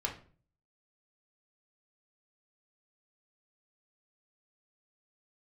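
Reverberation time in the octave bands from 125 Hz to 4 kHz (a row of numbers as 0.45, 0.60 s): 0.70, 0.55, 0.45, 0.40, 0.35, 0.30 s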